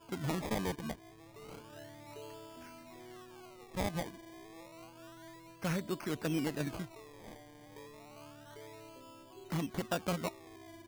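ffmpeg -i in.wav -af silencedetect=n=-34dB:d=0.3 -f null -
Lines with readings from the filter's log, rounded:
silence_start: 0.91
silence_end: 3.77 | silence_duration: 2.86
silence_start: 4.03
silence_end: 5.64 | silence_duration: 1.62
silence_start: 6.82
silence_end: 9.52 | silence_duration: 2.70
silence_start: 10.28
silence_end: 10.87 | silence_duration: 0.59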